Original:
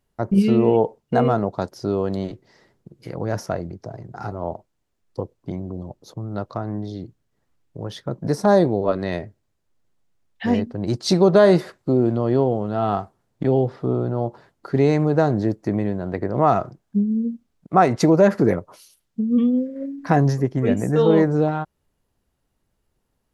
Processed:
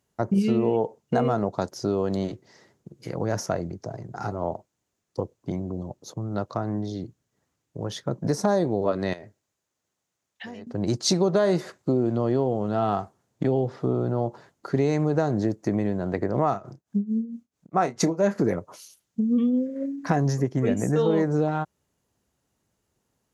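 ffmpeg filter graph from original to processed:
ffmpeg -i in.wav -filter_complex "[0:a]asettb=1/sr,asplit=3[link_01][link_02][link_03];[link_01]atrim=end=9.134[link_04];[link_02]atrim=start=9.13:end=10.67,asetpts=PTS-STARTPTS,afade=type=in:duration=0.004:curve=qsin,afade=type=out:start_time=1.536:duration=0.004:curve=qsin,lowshelf=frequency=320:gain=-9,acompressor=threshold=-35dB:ratio=12:attack=3.2:release=140:knee=1:detection=peak[link_05];[link_03]atrim=start=10.666[link_06];[link_04][link_05]acrossfade=duration=0.004:curve1=hsin:curve2=qsin[link_07];[link_07][link_06]acrossfade=duration=0.004:curve1=qsin:curve2=hsin,asettb=1/sr,asplit=3[link_08][link_09][link_10];[link_08]atrim=end=16.494[link_11];[link_09]atrim=start=16.49:end=18.36,asetpts=PTS-STARTPTS,afade=type=in:duration=0.004:curve=qsin,afade=type=out:start_time=1.866:duration=0.004:curve=qsin,tremolo=f=4.5:d=0.91,asplit=2[link_12][link_13];[link_13]adelay=30,volume=-11dB[link_14];[link_12][link_14]amix=inputs=2:normalize=0,atrim=end_sample=82467[link_15];[link_10]atrim=start=18.356[link_16];[link_11][link_15]acrossfade=duration=0.004:curve1=hsin:curve2=qsin[link_17];[link_17][link_16]acrossfade=duration=0.004:curve1=qsin:curve2=hsin,highpass=83,equalizer=frequency=6600:width_type=o:width=0.47:gain=8,acompressor=threshold=-20dB:ratio=3" out.wav

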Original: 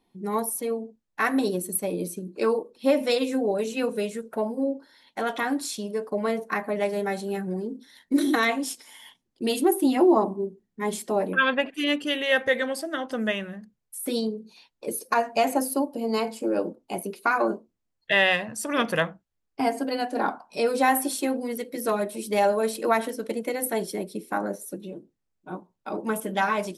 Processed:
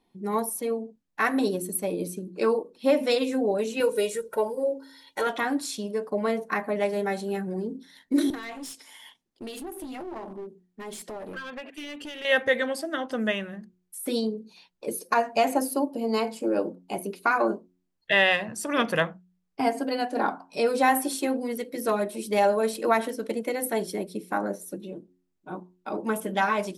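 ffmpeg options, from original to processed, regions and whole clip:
ffmpeg -i in.wav -filter_complex "[0:a]asettb=1/sr,asplit=3[link_01][link_02][link_03];[link_01]atrim=end=3.804[link_04];[link_02]atrim=start=3.8:end=5.27,asetpts=PTS-STARTPTS,afade=type=in:duration=0.004:curve=qsin,afade=type=out:start_time=1.466:duration=0.004:curve=qsin,aemphasis=mode=production:type=cd,aecho=1:1:2.1:0.73,atrim=end_sample=64827[link_05];[link_03]atrim=start=5.266[link_06];[link_04][link_05]acrossfade=duration=0.004:curve1=hsin:curve2=qsin[link_07];[link_07][link_06]acrossfade=duration=0.004:curve1=qsin:curve2=hsin,asettb=1/sr,asplit=3[link_08][link_09][link_10];[link_08]atrim=end=8.304[link_11];[link_09]atrim=start=8.3:end=12.25,asetpts=PTS-STARTPTS,afade=type=in:duration=0.004:curve=qsin,afade=type=out:start_time=3.946:duration=0.004:curve=qsin,lowshelf=frequency=250:gain=-6.5,acompressor=threshold=-32dB:ratio=10:attack=3.2:release=140:knee=1:detection=peak,aeval=exprs='clip(val(0),-1,0.0158)':channel_layout=same[link_12];[link_10]atrim=start=12.246[link_13];[link_11][link_12]acrossfade=duration=0.004:curve1=hsin:curve2=qsin[link_14];[link_14][link_13]acrossfade=duration=0.004:curve1=qsin:curve2=hsin,highshelf=frequency=9000:gain=-4,bandreject=frequency=90.54:width_type=h:width=4,bandreject=frequency=181.08:width_type=h:width=4,bandreject=frequency=271.62:width_type=h:width=4,bandreject=frequency=362.16:width_type=h:width=4" out.wav

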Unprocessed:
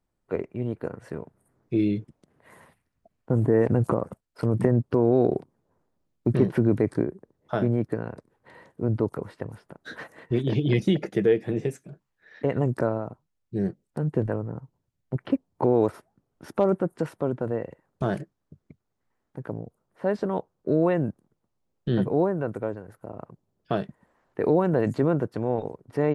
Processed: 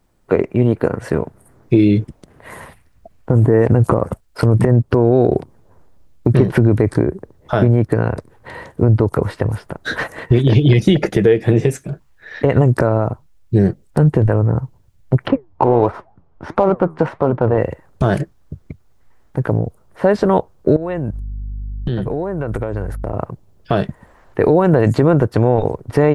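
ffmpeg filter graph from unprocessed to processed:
ffmpeg -i in.wav -filter_complex "[0:a]asettb=1/sr,asplit=3[link_01][link_02][link_03];[link_01]atrim=end=15.284[link_04];[link_02]atrim=start=15.28:end=17.58,asetpts=PTS-STARTPTS,afade=type=in:duration=0.004:curve=qsin,afade=type=out:start_time=2.296:duration=0.004:curve=qsin,equalizer=frequency=920:width=1.3:gain=7,flanger=delay=3.5:depth=9.7:regen=77:speed=1.5:shape=triangular,adynamicsmooth=sensitivity=4:basefreq=3100[link_05];[link_03]atrim=start=17.576[link_06];[link_04][link_05]acrossfade=duration=0.004:curve1=hsin:curve2=qsin[link_07];[link_07][link_06]acrossfade=duration=0.004:curve1=qsin:curve2=hsin,asettb=1/sr,asplit=3[link_08][link_09][link_10];[link_08]atrim=end=20.764[link_11];[link_09]atrim=start=20.76:end=23.13,asetpts=PTS-STARTPTS,afade=type=in:duration=0.004:curve=qsin,afade=type=out:start_time=2.366:duration=0.004:curve=qsin,agate=range=-33dB:threshold=-52dB:ratio=3:release=100:detection=peak,aeval=exprs='val(0)+0.00282*(sin(2*PI*50*n/s)+sin(2*PI*2*50*n/s)/2+sin(2*PI*3*50*n/s)/3+sin(2*PI*4*50*n/s)/4+sin(2*PI*5*50*n/s)/5)':channel_layout=same,acompressor=threshold=-34dB:ratio=8:attack=3.2:release=140:knee=1:detection=peak[link_12];[link_10]atrim=start=23.126[link_13];[link_11][link_12]acrossfade=duration=0.004:curve1=hsin:curve2=qsin[link_14];[link_14][link_13]acrossfade=duration=0.004:curve1=qsin:curve2=hsin,asubboost=boost=4:cutoff=90,acompressor=threshold=-25dB:ratio=6,alimiter=level_in=18.5dB:limit=-1dB:release=50:level=0:latency=1,volume=-1dB" out.wav

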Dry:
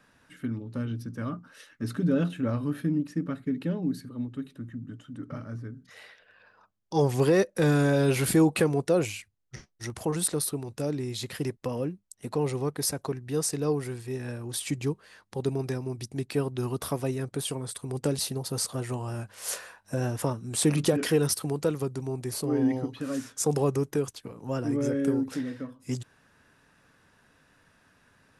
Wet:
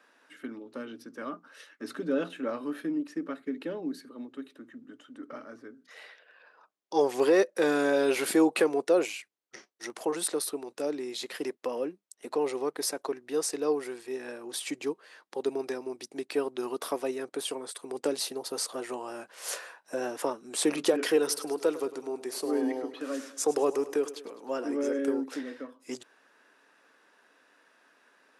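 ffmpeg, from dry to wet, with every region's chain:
ffmpeg -i in.wav -filter_complex "[0:a]asettb=1/sr,asplit=3[link_01][link_02][link_03];[link_01]atrim=end=21.174[link_04];[link_02]atrim=start=21.17:end=24.99,asetpts=PTS-STARTPTS,afade=type=in:duration=0.004:curve=qsin,afade=type=out:start_time=3.816:duration=0.004:curve=qsin,highpass=140,aecho=1:1:103|206|309|412|515:0.168|0.0923|0.0508|0.0279|0.0154,atrim=end_sample=168462[link_05];[link_03]atrim=start=24.986[link_06];[link_04][link_05]acrossfade=duration=0.004:curve1=hsin:curve2=qsin[link_07];[link_07][link_06]acrossfade=duration=0.004:curve1=qsin:curve2=hsin,highpass=frequency=310:width=0.5412,highpass=frequency=310:width=1.3066,highshelf=frequency=7500:gain=-7.5,volume=1dB" out.wav

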